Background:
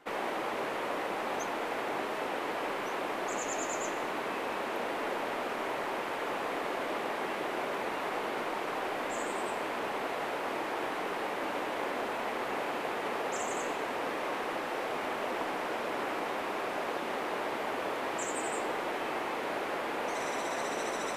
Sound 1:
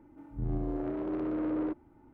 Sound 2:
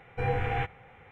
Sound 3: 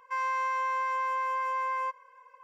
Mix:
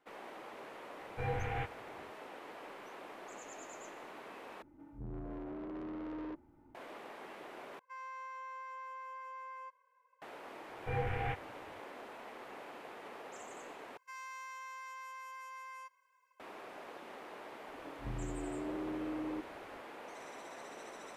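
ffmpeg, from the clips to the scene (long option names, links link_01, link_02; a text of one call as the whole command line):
ffmpeg -i bed.wav -i cue0.wav -i cue1.wav -i cue2.wav -filter_complex "[2:a]asplit=2[link_01][link_02];[1:a]asplit=2[link_03][link_04];[3:a]asplit=2[link_05][link_06];[0:a]volume=-15dB[link_07];[link_03]asoftclip=type=tanh:threshold=-36dB[link_08];[link_02]aresample=8000,aresample=44100[link_09];[link_06]aderivative[link_10];[link_04]acompressor=threshold=-33dB:ratio=6:attack=3.2:release=140:knee=1:detection=peak[link_11];[link_07]asplit=4[link_12][link_13][link_14][link_15];[link_12]atrim=end=4.624[link_16];[link_08]atrim=end=2.13,asetpts=PTS-STARTPTS,volume=-4.5dB[link_17];[link_13]atrim=start=6.746:end=7.794[link_18];[link_05]atrim=end=2.43,asetpts=PTS-STARTPTS,volume=-16.5dB[link_19];[link_14]atrim=start=10.216:end=13.974[link_20];[link_10]atrim=end=2.43,asetpts=PTS-STARTPTS,volume=-2dB[link_21];[link_15]atrim=start=16.396[link_22];[link_01]atrim=end=1.11,asetpts=PTS-STARTPTS,volume=-8dB,afade=type=in:duration=0.004:curve=hsin,afade=type=out:start_time=1.106:duration=0.004:curve=hsin,adelay=1000[link_23];[link_09]atrim=end=1.11,asetpts=PTS-STARTPTS,volume=-7dB,afade=type=in:duration=0.004:curve=hsin,afade=type=out:start_time=1.106:duration=0.004:curve=hsin,adelay=10690[link_24];[link_11]atrim=end=2.13,asetpts=PTS-STARTPTS,volume=-3.5dB,afade=type=in:duration=0.004:curve=hsin,afade=type=out:start_time=2.126:duration=0.004:curve=hsin,adelay=17680[link_25];[link_16][link_17]acrossfade=duration=0.004:curve1=hsin:curve2=hsin[link_26];[link_26][link_18]acrossfade=duration=0.004:curve1=hsin:curve2=hsin[link_27];[link_27][link_19]acrossfade=duration=0.004:curve1=hsin:curve2=hsin[link_28];[link_28][link_20]acrossfade=duration=0.004:curve1=hsin:curve2=hsin[link_29];[link_29][link_21]acrossfade=duration=0.004:curve1=hsin:curve2=hsin[link_30];[link_30][link_22]acrossfade=duration=0.004:curve1=hsin:curve2=hsin[link_31];[link_31][link_23][link_24][link_25]amix=inputs=4:normalize=0" out.wav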